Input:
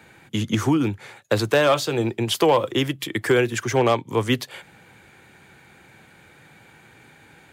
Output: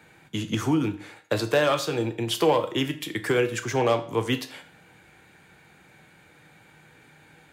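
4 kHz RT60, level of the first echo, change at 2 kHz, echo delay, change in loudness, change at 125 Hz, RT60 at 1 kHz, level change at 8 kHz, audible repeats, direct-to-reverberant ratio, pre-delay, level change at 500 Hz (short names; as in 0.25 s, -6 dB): 0.45 s, none, -4.0 dB, none, -3.5 dB, -4.5 dB, 0.50 s, -4.0 dB, none, 7.0 dB, 6 ms, -3.5 dB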